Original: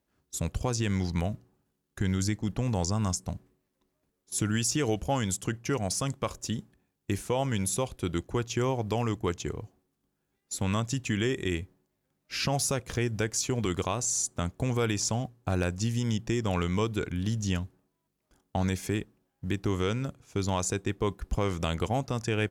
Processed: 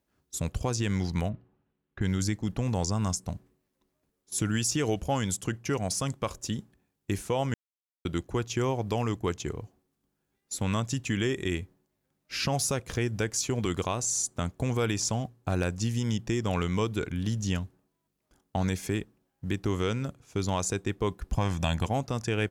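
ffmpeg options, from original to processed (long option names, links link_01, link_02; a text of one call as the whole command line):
ffmpeg -i in.wav -filter_complex "[0:a]asplit=3[link_01][link_02][link_03];[link_01]afade=type=out:start_time=1.28:duration=0.02[link_04];[link_02]lowpass=frequency=3200:width=0.5412,lowpass=frequency=3200:width=1.3066,afade=type=in:start_time=1.28:duration=0.02,afade=type=out:start_time=2.01:duration=0.02[link_05];[link_03]afade=type=in:start_time=2.01:duration=0.02[link_06];[link_04][link_05][link_06]amix=inputs=3:normalize=0,asettb=1/sr,asplit=3[link_07][link_08][link_09];[link_07]atrim=end=21.354[link_10];[link_08]atrim=start=21.35:end=21.86,asetpts=PTS-STARTPTS,afade=type=in:duration=0.004:curve=qsin,afade=type=out:start_time=0.506:duration=0.004:curve=qsin,aecho=1:1:1.2:0.65,atrim=end_sample=22491[link_11];[link_09]atrim=start=21.856[link_12];[link_10][link_11]acrossfade=duration=0.004:curve1=hsin:curve2=qsin[link_13];[link_13][link_12]acrossfade=duration=0.004:curve1=qsin:curve2=hsin,asplit=3[link_14][link_15][link_16];[link_14]atrim=end=7.54,asetpts=PTS-STARTPTS,afade=type=out:start_time=7.536:duration=0.004:curve=hsin[link_17];[link_15]atrim=start=7.54:end=8.05,asetpts=PTS-STARTPTS,volume=0[link_18];[link_16]atrim=start=8.05,asetpts=PTS-STARTPTS,afade=type=in:duration=0.004:curve=hsin[link_19];[link_17][link_18][link_19]concat=n=3:v=0:a=1" out.wav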